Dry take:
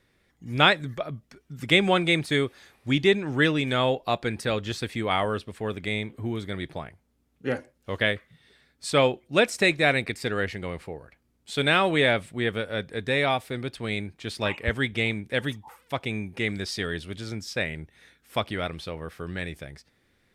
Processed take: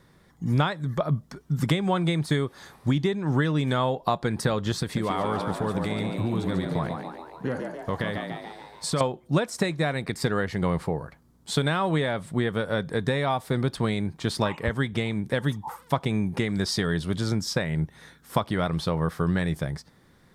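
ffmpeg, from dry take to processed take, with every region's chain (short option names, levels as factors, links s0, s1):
-filter_complex "[0:a]asettb=1/sr,asplit=3[s0][s1][s2];[s0]atrim=end=4.824[s3];[s1]atrim=start=4.82:end=9.01,asetpts=PTS-STARTPTS,afade=t=in:d=0.004:c=qsin,afade=t=out:st=4.186:d=0.004:c=qsin,bandreject=f=830:w=17,acompressor=threshold=0.02:ratio=4:attack=3.2:release=140:knee=1:detection=peak,asplit=9[s4][s5][s6][s7][s8][s9][s10][s11][s12];[s5]adelay=143,afreqshift=78,volume=0.531[s13];[s6]adelay=286,afreqshift=156,volume=0.313[s14];[s7]adelay=429,afreqshift=234,volume=0.184[s15];[s8]adelay=572,afreqshift=312,volume=0.11[s16];[s9]adelay=715,afreqshift=390,volume=0.0646[s17];[s10]adelay=858,afreqshift=468,volume=0.038[s18];[s11]adelay=1001,afreqshift=546,volume=0.0224[s19];[s12]adelay=1144,afreqshift=624,volume=0.0132[s20];[s4][s13][s14][s15][s16][s17][s18][s19][s20]amix=inputs=9:normalize=0,atrim=end_sample=184779[s21];[s2]atrim=start=9.006[s22];[s3][s21]acrossfade=d=0.004:c1=hsin:c2=qsin[s23];[s23][s22]acrossfade=d=0.004:c1=qsin:c2=hsin,acompressor=threshold=0.0316:ratio=16,equalizer=f=160:t=o:w=0.67:g=9,equalizer=f=1000:t=o:w=0.67:g=7,equalizer=f=2500:t=o:w=0.67:g=-9,volume=2.37"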